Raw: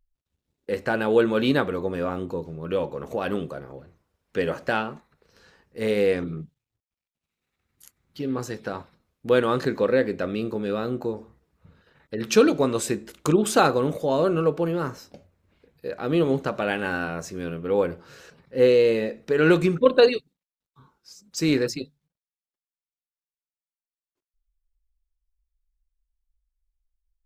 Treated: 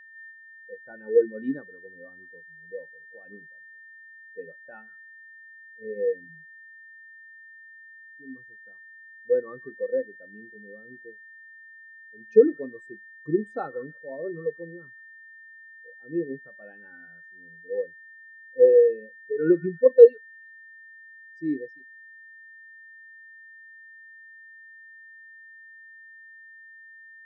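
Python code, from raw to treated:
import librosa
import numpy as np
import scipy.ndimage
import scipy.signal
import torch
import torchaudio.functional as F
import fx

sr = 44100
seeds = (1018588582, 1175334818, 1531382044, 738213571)

y = x + 10.0 ** (-28.0 / 20.0) * np.sin(2.0 * np.pi * 1800.0 * np.arange(len(x)) / sr)
y = fx.echo_stepped(y, sr, ms=156, hz=1300.0, octaves=0.7, feedback_pct=70, wet_db=-8.0)
y = fx.spectral_expand(y, sr, expansion=2.5)
y = y * librosa.db_to_amplitude(2.5)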